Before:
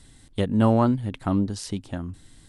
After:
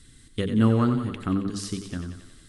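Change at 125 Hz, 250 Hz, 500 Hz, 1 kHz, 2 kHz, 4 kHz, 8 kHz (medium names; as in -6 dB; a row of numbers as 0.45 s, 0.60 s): -0.5 dB, -1.0 dB, -4.0 dB, -5.0 dB, +1.0 dB, +1.0 dB, +1.0 dB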